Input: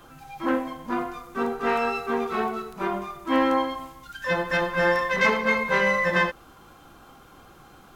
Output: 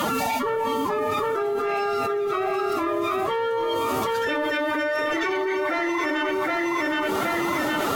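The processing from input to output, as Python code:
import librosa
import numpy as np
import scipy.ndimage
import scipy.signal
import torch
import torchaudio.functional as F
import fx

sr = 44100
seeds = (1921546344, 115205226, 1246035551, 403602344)

y = scipy.signal.sosfilt(scipy.signal.butter(2, 89.0, 'highpass', fs=sr, output='sos'), x)
y = fx.cheby_harmonics(y, sr, harmonics=(4,), levels_db=(-26,), full_scale_db=-7.0)
y = fx.pitch_keep_formants(y, sr, semitones=9.5)
y = fx.hum_notches(y, sr, base_hz=60, count=5)
y = fx.echo_feedback(y, sr, ms=768, feedback_pct=18, wet_db=-10)
y = fx.env_flatten(y, sr, amount_pct=100)
y = y * 10.0 ** (-6.5 / 20.0)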